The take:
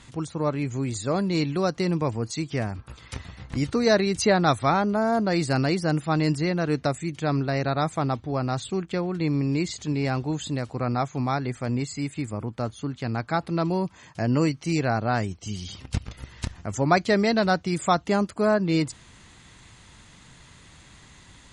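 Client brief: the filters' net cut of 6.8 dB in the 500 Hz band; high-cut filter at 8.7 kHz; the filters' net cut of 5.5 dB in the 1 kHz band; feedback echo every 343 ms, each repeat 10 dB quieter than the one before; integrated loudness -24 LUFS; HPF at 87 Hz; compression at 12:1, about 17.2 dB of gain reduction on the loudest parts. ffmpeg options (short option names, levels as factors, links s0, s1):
-af "highpass=87,lowpass=8700,equalizer=f=500:t=o:g=-8,equalizer=f=1000:t=o:g=-4.5,acompressor=threshold=0.0141:ratio=12,aecho=1:1:343|686|1029|1372:0.316|0.101|0.0324|0.0104,volume=7.5"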